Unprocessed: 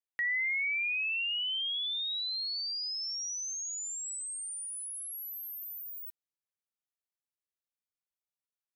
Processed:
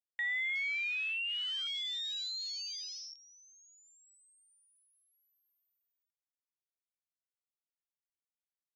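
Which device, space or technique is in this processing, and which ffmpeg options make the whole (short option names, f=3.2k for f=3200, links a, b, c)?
over-cleaned archive recording: -af "highpass=140,lowpass=5.8k,afwtdn=0.0126,volume=-3dB"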